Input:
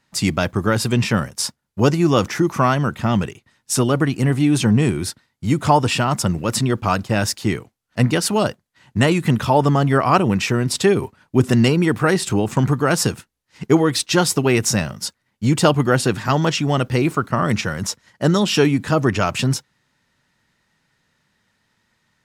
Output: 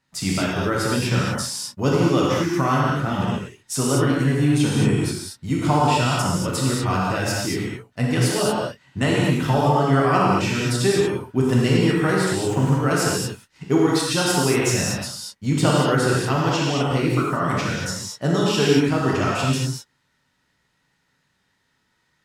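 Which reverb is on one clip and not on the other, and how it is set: non-linear reverb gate 0.26 s flat, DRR -5 dB; gain -8 dB

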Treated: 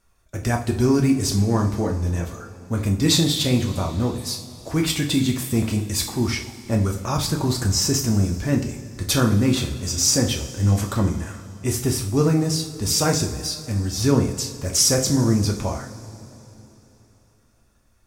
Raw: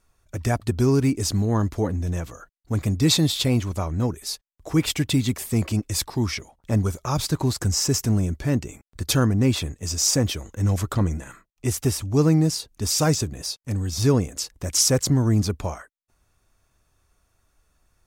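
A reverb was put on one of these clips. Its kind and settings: two-slope reverb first 0.42 s, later 3.6 s, from -18 dB, DRR 1 dB

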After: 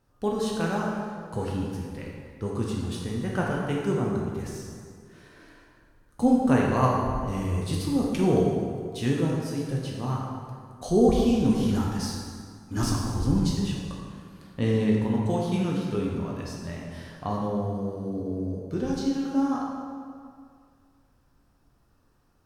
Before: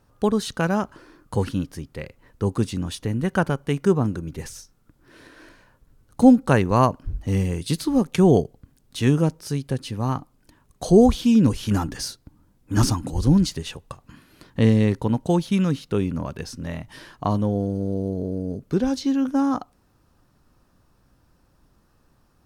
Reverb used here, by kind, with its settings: plate-style reverb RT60 2.1 s, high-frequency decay 0.65×, DRR -3.5 dB; gain -9 dB

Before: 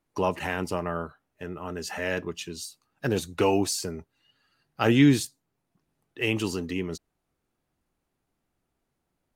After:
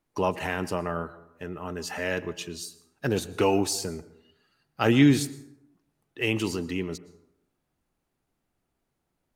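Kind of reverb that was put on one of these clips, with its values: plate-style reverb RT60 0.84 s, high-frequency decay 0.5×, pre-delay 0.1 s, DRR 17 dB

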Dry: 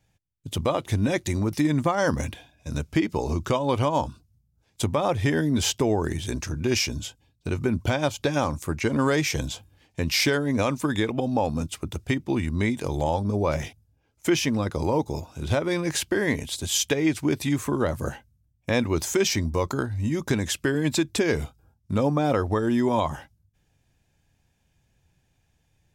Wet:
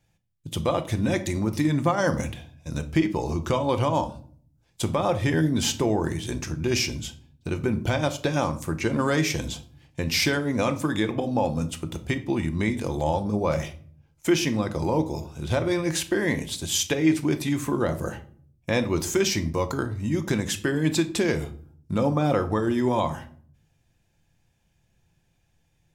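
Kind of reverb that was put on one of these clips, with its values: shoebox room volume 560 m³, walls furnished, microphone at 0.81 m; gain -1 dB

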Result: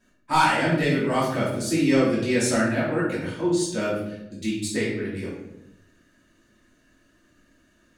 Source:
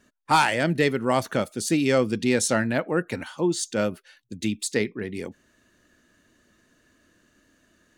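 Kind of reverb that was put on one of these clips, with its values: shoebox room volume 240 m³, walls mixed, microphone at 2.8 m; gain -8.5 dB

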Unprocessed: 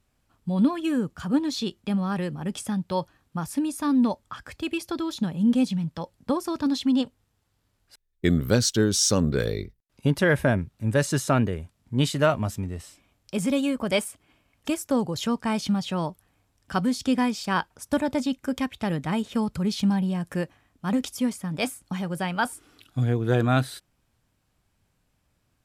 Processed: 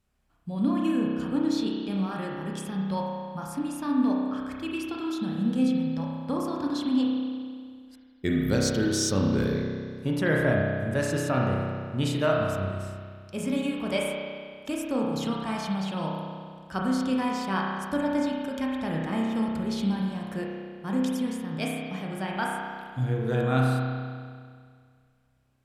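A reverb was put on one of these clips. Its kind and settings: spring tank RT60 2 s, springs 31 ms, chirp 55 ms, DRR -2.5 dB; gain -6.5 dB

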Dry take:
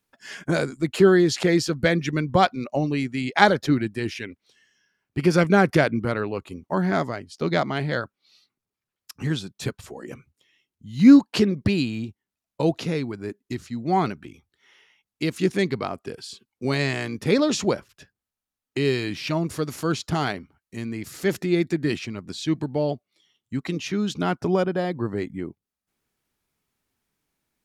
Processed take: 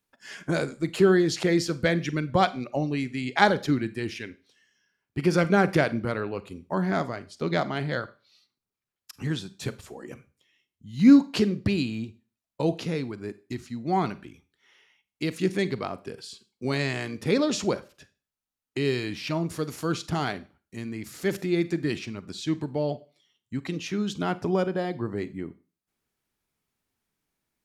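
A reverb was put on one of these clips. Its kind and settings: Schroeder reverb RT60 0.35 s, combs from 32 ms, DRR 15 dB; gain -3.5 dB

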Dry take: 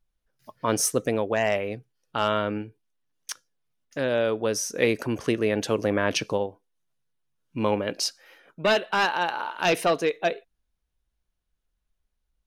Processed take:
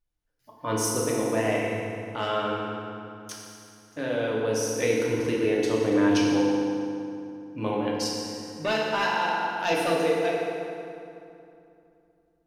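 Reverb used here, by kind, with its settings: FDN reverb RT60 2.7 s, low-frequency decay 1.3×, high-frequency decay 0.7×, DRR -4.5 dB; gain -7.5 dB

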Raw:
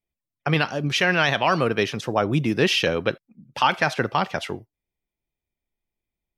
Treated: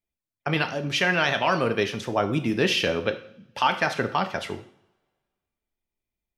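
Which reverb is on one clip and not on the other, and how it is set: two-slope reverb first 0.55 s, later 1.8 s, from -26 dB, DRR 7 dB; gain -3 dB

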